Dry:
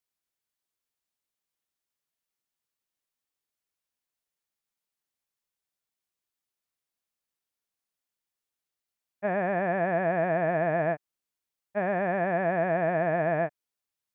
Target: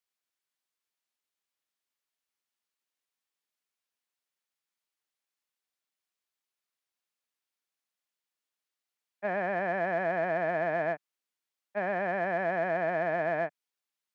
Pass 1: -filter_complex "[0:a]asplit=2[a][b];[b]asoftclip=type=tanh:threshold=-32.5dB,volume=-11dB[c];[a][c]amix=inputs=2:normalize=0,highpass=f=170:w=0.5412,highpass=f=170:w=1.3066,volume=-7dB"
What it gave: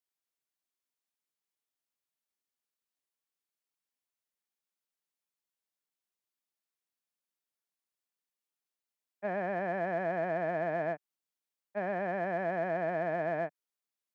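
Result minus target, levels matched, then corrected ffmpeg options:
2000 Hz band -2.5 dB
-filter_complex "[0:a]asplit=2[a][b];[b]asoftclip=type=tanh:threshold=-32.5dB,volume=-11dB[c];[a][c]amix=inputs=2:normalize=0,highpass=f=170:w=0.5412,highpass=f=170:w=1.3066,equalizer=f=2.3k:w=0.32:g=6,volume=-7dB"

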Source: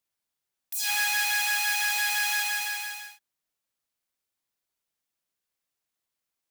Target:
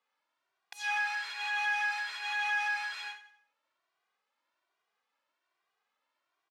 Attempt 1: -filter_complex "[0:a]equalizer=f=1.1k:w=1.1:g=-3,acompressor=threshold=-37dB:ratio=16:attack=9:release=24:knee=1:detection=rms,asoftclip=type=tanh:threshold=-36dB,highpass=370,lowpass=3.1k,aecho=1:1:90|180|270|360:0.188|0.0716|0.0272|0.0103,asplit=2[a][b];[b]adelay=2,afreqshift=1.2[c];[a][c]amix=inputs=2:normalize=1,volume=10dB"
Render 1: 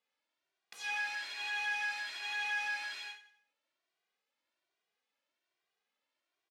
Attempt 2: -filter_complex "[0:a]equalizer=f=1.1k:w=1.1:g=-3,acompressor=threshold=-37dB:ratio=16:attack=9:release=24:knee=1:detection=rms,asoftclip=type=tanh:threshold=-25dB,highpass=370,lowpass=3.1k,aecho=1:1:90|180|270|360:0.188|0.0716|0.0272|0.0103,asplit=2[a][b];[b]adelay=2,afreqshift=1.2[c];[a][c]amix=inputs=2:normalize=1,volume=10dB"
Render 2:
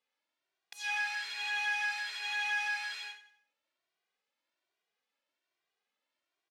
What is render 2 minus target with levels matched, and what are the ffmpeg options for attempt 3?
1000 Hz band -4.0 dB
-filter_complex "[0:a]equalizer=f=1.1k:w=1.1:g=7.5,acompressor=threshold=-37dB:ratio=16:attack=9:release=24:knee=1:detection=rms,asoftclip=type=tanh:threshold=-25dB,highpass=370,lowpass=3.1k,aecho=1:1:90|180|270|360:0.188|0.0716|0.0272|0.0103,asplit=2[a][b];[b]adelay=2,afreqshift=1.2[c];[a][c]amix=inputs=2:normalize=1,volume=10dB"

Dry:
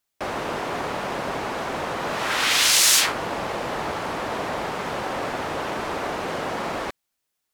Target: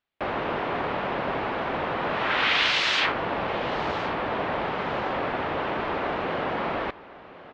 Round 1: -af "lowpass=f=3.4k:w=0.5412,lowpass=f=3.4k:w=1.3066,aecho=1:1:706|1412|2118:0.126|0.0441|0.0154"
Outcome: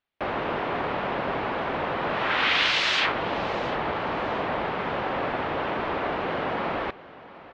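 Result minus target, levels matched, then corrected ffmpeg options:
echo 0.356 s early
-af "lowpass=f=3.4k:w=0.5412,lowpass=f=3.4k:w=1.3066,aecho=1:1:1062|2124|3186:0.126|0.0441|0.0154"

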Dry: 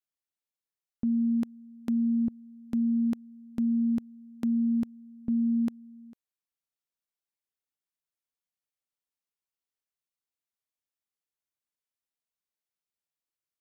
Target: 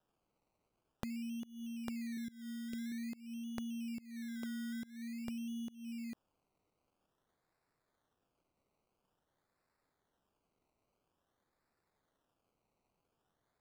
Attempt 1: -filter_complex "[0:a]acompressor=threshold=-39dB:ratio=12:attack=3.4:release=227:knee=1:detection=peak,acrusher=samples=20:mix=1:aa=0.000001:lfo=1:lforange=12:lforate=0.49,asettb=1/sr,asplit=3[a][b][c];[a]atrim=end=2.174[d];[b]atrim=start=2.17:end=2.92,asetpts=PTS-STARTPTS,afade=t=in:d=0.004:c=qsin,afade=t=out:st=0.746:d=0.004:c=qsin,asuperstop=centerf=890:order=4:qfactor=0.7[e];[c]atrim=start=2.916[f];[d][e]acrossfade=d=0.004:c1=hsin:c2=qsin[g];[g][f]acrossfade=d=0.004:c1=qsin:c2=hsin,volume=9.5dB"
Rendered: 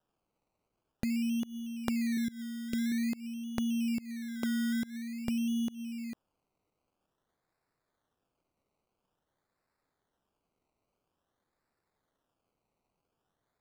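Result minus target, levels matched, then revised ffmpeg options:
compressor: peak gain reduction -10.5 dB
-filter_complex "[0:a]acompressor=threshold=-50.5dB:ratio=12:attack=3.4:release=227:knee=1:detection=peak,acrusher=samples=20:mix=1:aa=0.000001:lfo=1:lforange=12:lforate=0.49,asettb=1/sr,asplit=3[a][b][c];[a]atrim=end=2.174[d];[b]atrim=start=2.17:end=2.92,asetpts=PTS-STARTPTS,afade=t=in:d=0.004:c=qsin,afade=t=out:st=0.746:d=0.004:c=qsin,asuperstop=centerf=890:order=4:qfactor=0.7[e];[c]atrim=start=2.916[f];[d][e]acrossfade=d=0.004:c1=hsin:c2=qsin[g];[g][f]acrossfade=d=0.004:c1=qsin:c2=hsin,volume=9.5dB"

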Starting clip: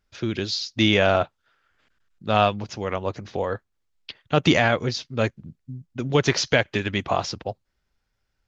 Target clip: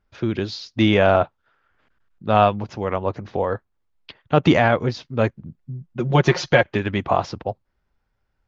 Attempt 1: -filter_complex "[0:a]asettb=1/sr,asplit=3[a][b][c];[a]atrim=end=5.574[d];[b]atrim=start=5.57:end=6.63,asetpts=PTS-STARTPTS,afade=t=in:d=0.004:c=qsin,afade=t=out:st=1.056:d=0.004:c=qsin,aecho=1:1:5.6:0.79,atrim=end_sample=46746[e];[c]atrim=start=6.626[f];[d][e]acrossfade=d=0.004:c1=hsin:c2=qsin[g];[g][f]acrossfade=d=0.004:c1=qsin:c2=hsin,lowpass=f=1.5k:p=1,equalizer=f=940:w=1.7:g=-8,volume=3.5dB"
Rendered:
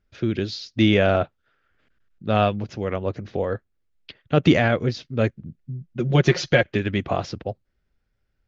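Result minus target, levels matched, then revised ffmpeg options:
1000 Hz band -4.5 dB
-filter_complex "[0:a]asettb=1/sr,asplit=3[a][b][c];[a]atrim=end=5.574[d];[b]atrim=start=5.57:end=6.63,asetpts=PTS-STARTPTS,afade=t=in:d=0.004:c=qsin,afade=t=out:st=1.056:d=0.004:c=qsin,aecho=1:1:5.6:0.79,atrim=end_sample=46746[e];[c]atrim=start=6.626[f];[d][e]acrossfade=d=0.004:c1=hsin:c2=qsin[g];[g][f]acrossfade=d=0.004:c1=qsin:c2=hsin,lowpass=f=1.5k:p=1,equalizer=f=940:w=1.7:g=3,volume=3.5dB"

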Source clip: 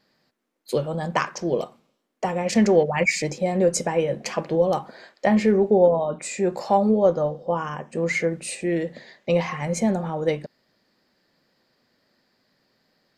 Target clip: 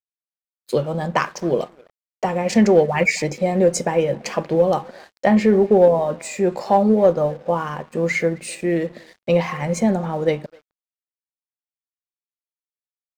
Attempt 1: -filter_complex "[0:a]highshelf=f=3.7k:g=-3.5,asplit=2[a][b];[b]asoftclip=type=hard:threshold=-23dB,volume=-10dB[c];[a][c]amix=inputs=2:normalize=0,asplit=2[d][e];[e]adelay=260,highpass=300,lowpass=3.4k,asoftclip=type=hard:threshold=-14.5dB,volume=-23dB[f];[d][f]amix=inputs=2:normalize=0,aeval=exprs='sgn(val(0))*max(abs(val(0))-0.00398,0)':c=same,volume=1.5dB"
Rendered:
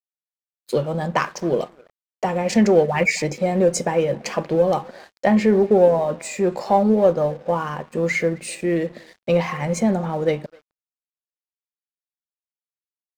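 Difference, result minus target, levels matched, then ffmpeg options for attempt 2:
hard clip: distortion +12 dB
-filter_complex "[0:a]highshelf=f=3.7k:g=-3.5,asplit=2[a][b];[b]asoftclip=type=hard:threshold=-13dB,volume=-10dB[c];[a][c]amix=inputs=2:normalize=0,asplit=2[d][e];[e]adelay=260,highpass=300,lowpass=3.4k,asoftclip=type=hard:threshold=-14.5dB,volume=-23dB[f];[d][f]amix=inputs=2:normalize=0,aeval=exprs='sgn(val(0))*max(abs(val(0))-0.00398,0)':c=same,volume=1.5dB"

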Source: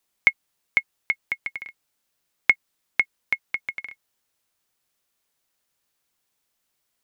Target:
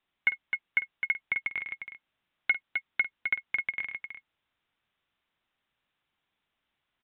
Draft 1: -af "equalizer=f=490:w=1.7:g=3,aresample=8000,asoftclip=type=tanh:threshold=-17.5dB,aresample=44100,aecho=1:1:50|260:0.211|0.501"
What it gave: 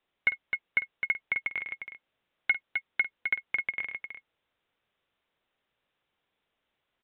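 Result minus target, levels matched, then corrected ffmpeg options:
500 Hz band +3.5 dB
-af "equalizer=f=490:w=1.7:g=-5,aresample=8000,asoftclip=type=tanh:threshold=-17.5dB,aresample=44100,aecho=1:1:50|260:0.211|0.501"

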